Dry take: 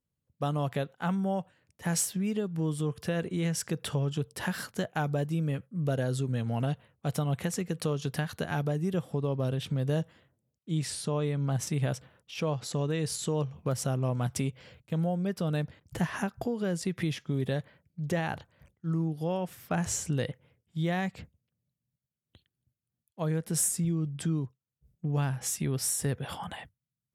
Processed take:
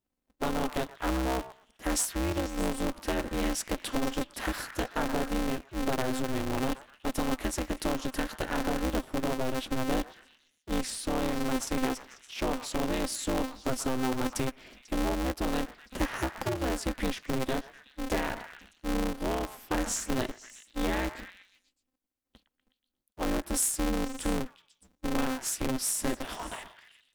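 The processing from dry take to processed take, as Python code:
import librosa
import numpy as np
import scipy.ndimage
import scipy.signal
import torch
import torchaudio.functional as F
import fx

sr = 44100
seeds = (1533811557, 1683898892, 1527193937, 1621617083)

y = fx.echo_stepped(x, sr, ms=123, hz=1100.0, octaves=0.7, feedback_pct=70, wet_db=-7.0)
y = y * np.sign(np.sin(2.0 * np.pi * 130.0 * np.arange(len(y)) / sr))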